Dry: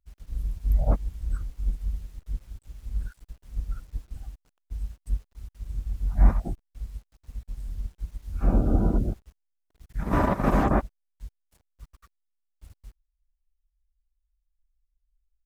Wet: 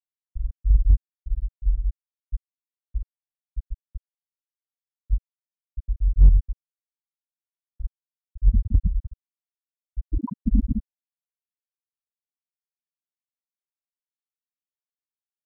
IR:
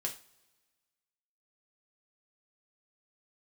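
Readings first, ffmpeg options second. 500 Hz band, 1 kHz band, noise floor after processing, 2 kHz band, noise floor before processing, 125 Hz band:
-24.0 dB, -19.0 dB, under -85 dBFS, under -30 dB, -78 dBFS, +2.0 dB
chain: -filter_complex "[0:a]aecho=1:1:43.73|113.7:0.282|0.447,afftfilt=real='re*gte(hypot(re,im),0.708)':imag='im*gte(hypot(re,im),0.708)':win_size=1024:overlap=0.75,asplit=2[a][b];[b]volume=14dB,asoftclip=hard,volume=-14dB,volume=3dB[c];[a][c]amix=inputs=2:normalize=0,volume=-2.5dB"

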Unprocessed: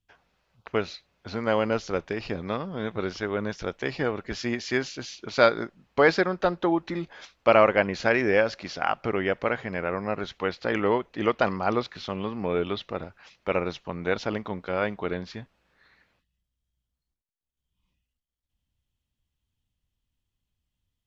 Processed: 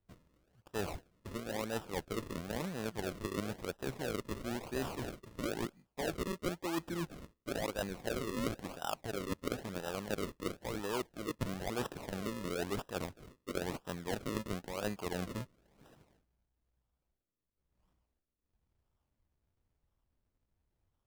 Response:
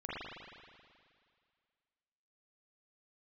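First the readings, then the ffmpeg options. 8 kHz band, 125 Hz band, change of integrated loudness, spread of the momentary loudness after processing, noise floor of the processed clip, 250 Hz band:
n/a, -7.0 dB, -13.0 dB, 5 LU, -85 dBFS, -9.5 dB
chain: -af "areverse,acompressor=threshold=-34dB:ratio=10,areverse,acrusher=samples=39:mix=1:aa=0.000001:lfo=1:lforange=39:lforate=0.99"

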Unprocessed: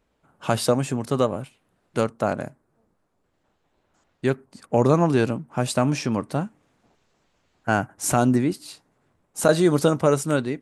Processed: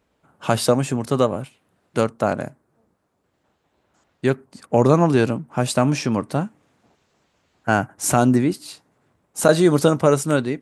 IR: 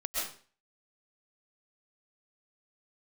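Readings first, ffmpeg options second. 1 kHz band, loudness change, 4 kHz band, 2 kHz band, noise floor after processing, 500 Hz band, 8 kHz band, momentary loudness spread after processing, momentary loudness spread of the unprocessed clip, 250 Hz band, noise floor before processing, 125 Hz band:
+3.0 dB, +3.0 dB, +3.0 dB, +3.0 dB, -70 dBFS, +3.0 dB, +3.0 dB, 14 LU, 15 LU, +3.0 dB, -71 dBFS, +3.0 dB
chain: -af "highpass=57,volume=3dB"

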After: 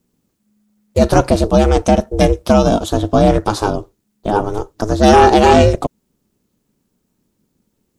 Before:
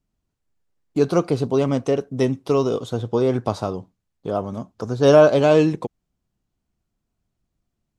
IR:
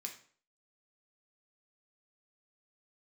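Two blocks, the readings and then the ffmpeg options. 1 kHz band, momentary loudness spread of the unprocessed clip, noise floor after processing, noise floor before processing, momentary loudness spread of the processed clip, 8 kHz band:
+14.0 dB, 17 LU, -69 dBFS, -79 dBFS, 14 LU, n/a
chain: -af "aeval=exprs='val(0)*sin(2*PI*210*n/s)':c=same,apsyclip=14.5dB,highshelf=f=7.1k:g=10.5,volume=-2.5dB"

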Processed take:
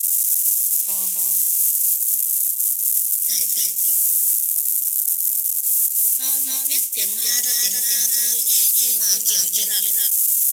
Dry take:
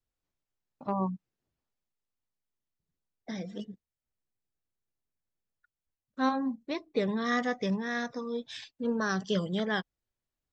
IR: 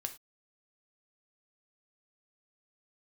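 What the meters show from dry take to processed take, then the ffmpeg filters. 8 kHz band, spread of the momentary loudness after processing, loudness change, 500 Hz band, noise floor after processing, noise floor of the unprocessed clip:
n/a, 3 LU, +16.5 dB, under -10 dB, -24 dBFS, under -85 dBFS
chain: -filter_complex "[0:a]aeval=exprs='val(0)+0.5*0.00708*sgn(val(0))':c=same,aexciter=amount=13.6:drive=2.9:freq=6.2k,aecho=1:1:274:0.668,agate=range=-33dB:threshold=-32dB:ratio=3:detection=peak,highshelf=f=5k:g=9,areverse,acompressor=threshold=-33dB:ratio=16,areverse,aresample=32000,aresample=44100,asplit=2[a][b];[1:a]atrim=start_sample=2205[c];[b][c]afir=irnorm=-1:irlink=0,volume=-15.5dB[d];[a][d]amix=inputs=2:normalize=0,acrusher=bits=5:mode=log:mix=0:aa=0.000001,bass=f=250:g=-9,treble=f=4k:g=-1,aexciter=amount=11.7:drive=8.1:freq=2.1k,volume=-5dB"

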